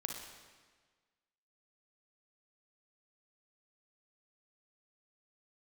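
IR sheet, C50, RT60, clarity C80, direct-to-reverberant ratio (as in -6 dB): 2.5 dB, 1.5 s, 5.0 dB, 1.5 dB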